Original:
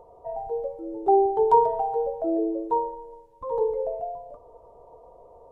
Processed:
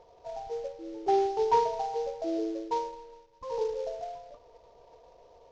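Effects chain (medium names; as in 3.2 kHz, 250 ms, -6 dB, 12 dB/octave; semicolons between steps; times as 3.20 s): CVSD coder 32 kbps; trim -6 dB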